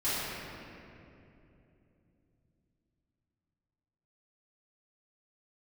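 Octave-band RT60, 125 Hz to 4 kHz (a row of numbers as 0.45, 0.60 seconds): 4.8, 4.2, 3.4, 2.4, 2.3, 1.7 seconds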